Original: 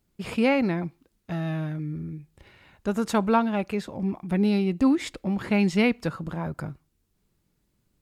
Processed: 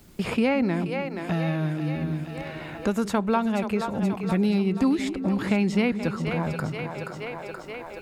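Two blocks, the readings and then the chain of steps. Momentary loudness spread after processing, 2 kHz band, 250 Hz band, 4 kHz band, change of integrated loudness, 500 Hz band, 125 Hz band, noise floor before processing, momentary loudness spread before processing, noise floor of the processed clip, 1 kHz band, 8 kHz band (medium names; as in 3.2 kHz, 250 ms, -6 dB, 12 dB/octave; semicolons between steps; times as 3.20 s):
12 LU, +0.5 dB, +0.5 dB, +0.5 dB, 0.0 dB, +0.5 dB, +2.5 dB, -73 dBFS, 13 LU, -39 dBFS, 0.0 dB, 0.0 dB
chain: two-band feedback delay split 370 Hz, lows 170 ms, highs 477 ms, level -11 dB; three bands compressed up and down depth 70%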